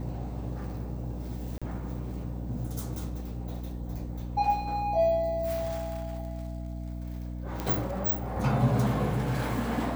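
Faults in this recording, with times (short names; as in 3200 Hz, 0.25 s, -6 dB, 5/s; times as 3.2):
hum 60 Hz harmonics 5 -36 dBFS
1.58–1.62 gap 36 ms
7.6 pop -17 dBFS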